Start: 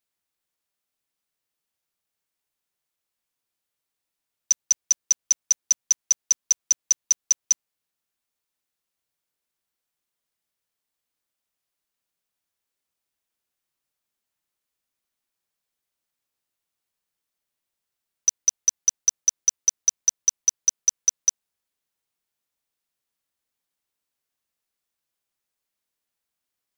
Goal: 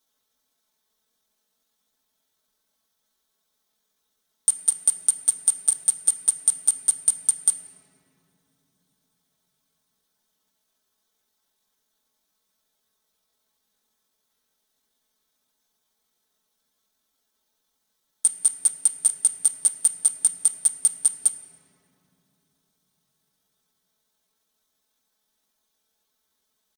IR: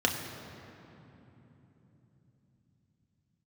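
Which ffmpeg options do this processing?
-filter_complex "[0:a]aecho=1:1:6.9:0.94,acompressor=threshold=0.141:ratio=8,alimiter=limit=0.188:level=0:latency=1:release=33,asetrate=66075,aresample=44100,atempo=0.66742,asplit=2[s0][s1];[1:a]atrim=start_sample=2205,asetrate=48510,aresample=44100[s2];[s1][s2]afir=irnorm=-1:irlink=0,volume=0.266[s3];[s0][s3]amix=inputs=2:normalize=0,volume=2.11"

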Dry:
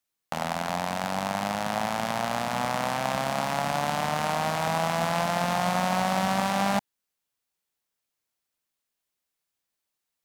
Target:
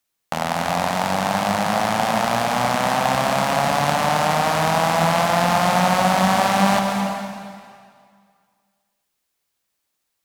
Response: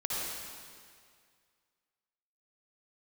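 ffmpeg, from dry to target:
-filter_complex "[0:a]asplit=2[s0][s1];[1:a]atrim=start_sample=2205,adelay=138[s2];[s1][s2]afir=irnorm=-1:irlink=0,volume=0.355[s3];[s0][s3]amix=inputs=2:normalize=0,volume=2.11"

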